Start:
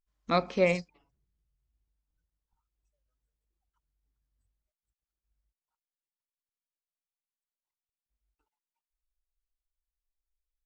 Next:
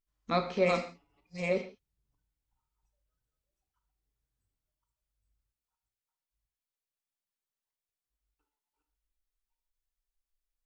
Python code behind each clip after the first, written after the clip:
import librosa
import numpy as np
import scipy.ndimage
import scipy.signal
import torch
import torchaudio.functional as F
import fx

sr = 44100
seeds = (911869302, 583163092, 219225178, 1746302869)

y = fx.reverse_delay(x, sr, ms=538, wet_db=-3.0)
y = fx.rev_gated(y, sr, seeds[0], gate_ms=190, shape='falling', drr_db=5.5)
y = y * 10.0 ** (-3.5 / 20.0)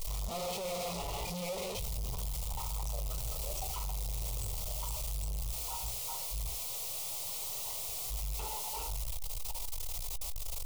y = np.sign(x) * np.sqrt(np.mean(np.square(x)))
y = fx.fixed_phaser(y, sr, hz=670.0, stages=4)
y = fx.doubler(y, sr, ms=17.0, db=-13.5)
y = y * 10.0 ** (5.5 / 20.0)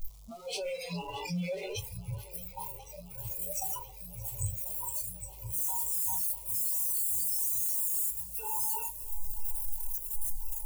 y = fx.noise_reduce_blind(x, sr, reduce_db=27)
y = fx.bass_treble(y, sr, bass_db=6, treble_db=6)
y = fx.echo_swing(y, sr, ms=1043, ratio=1.5, feedback_pct=77, wet_db=-19.5)
y = y * 10.0 ** (4.5 / 20.0)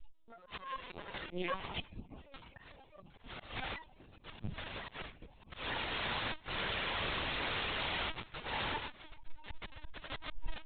y = fx.cheby_harmonics(x, sr, harmonics=(4, 7), levels_db=(-8, -15), full_scale_db=-19.0)
y = fx.lpc_vocoder(y, sr, seeds[1], excitation='pitch_kept', order=16)
y = fx.auto_swell(y, sr, attack_ms=150.0)
y = y * 10.0 ** (2.5 / 20.0)